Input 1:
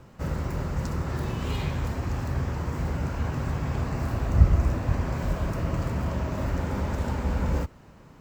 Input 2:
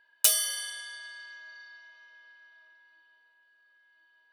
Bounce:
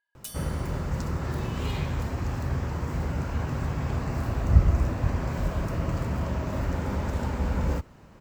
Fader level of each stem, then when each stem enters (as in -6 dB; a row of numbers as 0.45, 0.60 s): -0.5, -18.5 dB; 0.15, 0.00 s